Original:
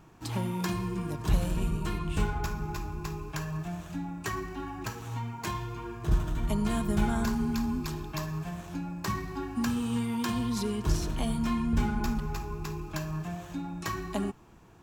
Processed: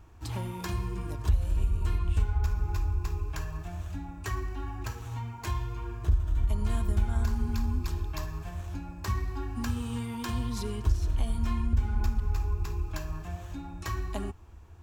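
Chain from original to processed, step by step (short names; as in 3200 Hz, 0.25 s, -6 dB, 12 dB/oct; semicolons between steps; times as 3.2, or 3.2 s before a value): resonant low shelf 110 Hz +10.5 dB, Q 3; compressor 3:1, threshold -20 dBFS, peak gain reduction 11 dB; gain -3 dB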